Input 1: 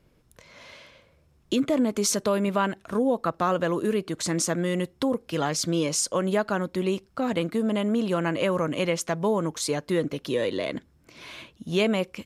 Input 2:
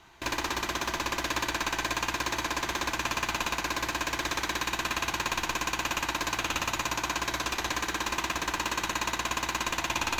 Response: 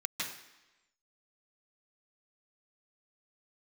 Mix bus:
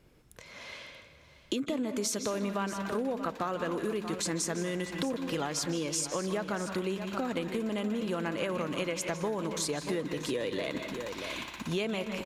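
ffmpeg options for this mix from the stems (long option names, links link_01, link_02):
-filter_complex "[0:a]volume=0dB,asplit=3[link_01][link_02][link_03];[link_02]volume=-10dB[link_04];[link_03]volume=-13dB[link_05];[1:a]bandreject=frequency=6300:width=12,adelay=2050,volume=-14dB[link_06];[2:a]atrim=start_sample=2205[link_07];[link_04][link_07]afir=irnorm=-1:irlink=0[link_08];[link_05]aecho=0:1:633:1[link_09];[link_01][link_06][link_08][link_09]amix=inputs=4:normalize=0,acompressor=threshold=-30dB:ratio=5"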